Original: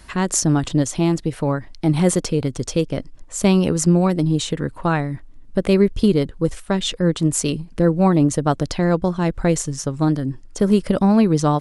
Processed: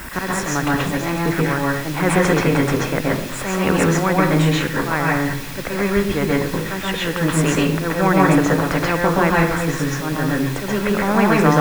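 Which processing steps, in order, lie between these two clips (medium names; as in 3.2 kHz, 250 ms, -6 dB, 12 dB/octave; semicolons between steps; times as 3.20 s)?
resonant high shelf 2.6 kHz -14 dB, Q 1.5; slow attack 296 ms; in parallel at -10 dB: word length cut 6-bit, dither triangular; on the sum: reverberation RT60 0.45 s, pre-delay 122 ms, DRR -5 dB; spectrum-flattening compressor 2:1; trim -10.5 dB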